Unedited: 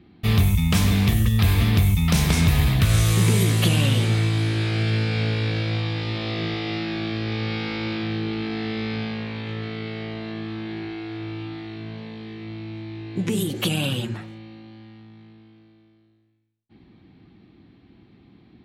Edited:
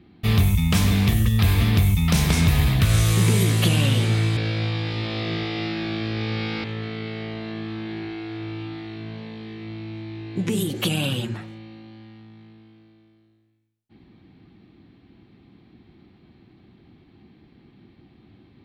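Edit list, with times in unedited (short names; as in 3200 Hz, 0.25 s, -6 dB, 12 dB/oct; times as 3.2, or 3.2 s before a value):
4.37–5.48 cut
7.75–9.44 cut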